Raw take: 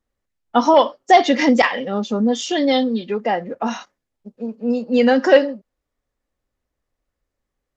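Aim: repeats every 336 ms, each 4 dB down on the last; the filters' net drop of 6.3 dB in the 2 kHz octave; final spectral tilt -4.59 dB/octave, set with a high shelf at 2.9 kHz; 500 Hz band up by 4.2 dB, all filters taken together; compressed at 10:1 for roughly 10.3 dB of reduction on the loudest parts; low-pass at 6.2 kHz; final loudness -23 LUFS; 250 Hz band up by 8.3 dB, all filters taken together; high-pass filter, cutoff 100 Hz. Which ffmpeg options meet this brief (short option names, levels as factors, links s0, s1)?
-af "highpass=100,lowpass=6200,equalizer=f=250:t=o:g=8.5,equalizer=f=500:t=o:g=3.5,equalizer=f=2000:t=o:g=-6,highshelf=f=2900:g=-4.5,acompressor=threshold=0.224:ratio=10,aecho=1:1:336|672|1008|1344|1680|2016|2352|2688|3024:0.631|0.398|0.25|0.158|0.0994|0.0626|0.0394|0.0249|0.0157,volume=0.562"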